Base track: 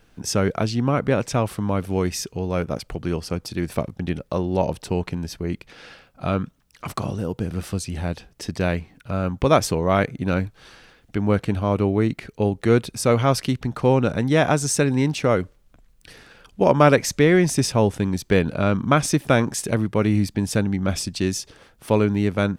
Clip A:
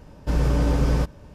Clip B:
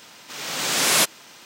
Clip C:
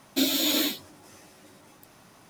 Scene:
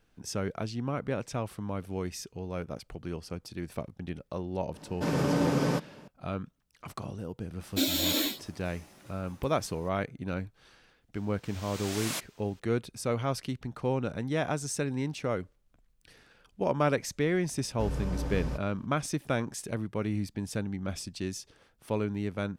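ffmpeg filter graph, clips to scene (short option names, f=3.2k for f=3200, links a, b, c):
-filter_complex "[1:a]asplit=2[a][b];[0:a]volume=-12dB[c];[a]highpass=f=150:w=0.5412,highpass=f=150:w=1.3066,atrim=end=1.34,asetpts=PTS-STARTPTS,volume=-0.5dB,afade=t=in:d=0.004:c=hsin,afade=t=out:st=1.336:d=0.004:c=hsin,adelay=4740[d];[3:a]atrim=end=2.29,asetpts=PTS-STARTPTS,volume=-3.5dB,afade=t=in:d=0.004:c=hsin,afade=t=out:st=2.286:d=0.004:c=hsin,adelay=7600[e];[2:a]atrim=end=1.45,asetpts=PTS-STARTPTS,volume=-17dB,afade=t=in:d=0.004:c=hsin,afade=t=out:st=1.446:d=0.004:c=hsin,adelay=11150[f];[b]atrim=end=1.34,asetpts=PTS-STARTPTS,volume=-12.5dB,afade=t=in:d=0.004:c=hsin,afade=t=out:st=1.336:d=0.004:c=hsin,adelay=17520[g];[c][d][e][f][g]amix=inputs=5:normalize=0"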